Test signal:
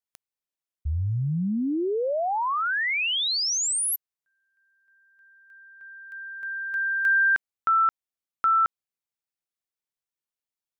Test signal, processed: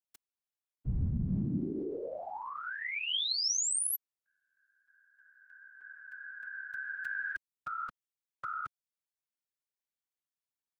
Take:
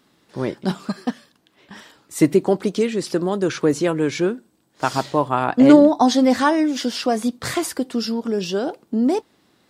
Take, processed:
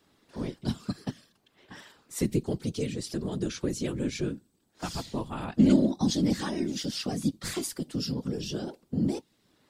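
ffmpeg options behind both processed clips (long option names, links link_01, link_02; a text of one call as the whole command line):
ffmpeg -i in.wav -filter_complex "[0:a]afftfilt=real='hypot(re,im)*cos(2*PI*random(0))':imag='hypot(re,im)*sin(2*PI*random(1))':win_size=512:overlap=0.75,acrossover=split=290|2700[link_01][link_02][link_03];[link_02]acompressor=threshold=-43dB:ratio=2.5:attack=7:release=705:knee=2.83:detection=peak[link_04];[link_01][link_04][link_03]amix=inputs=3:normalize=0" out.wav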